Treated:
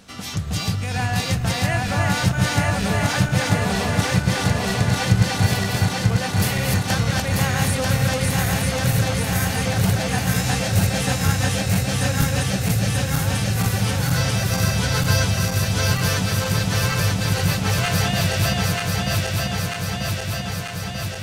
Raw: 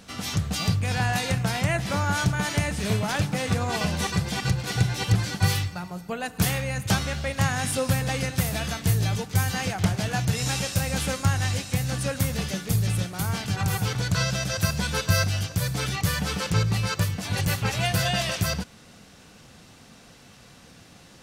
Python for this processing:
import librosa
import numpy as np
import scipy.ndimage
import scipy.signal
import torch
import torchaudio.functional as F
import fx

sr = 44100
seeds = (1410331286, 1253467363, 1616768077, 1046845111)

y = fx.reverse_delay_fb(x, sr, ms=470, feedback_pct=84, wet_db=-1.5)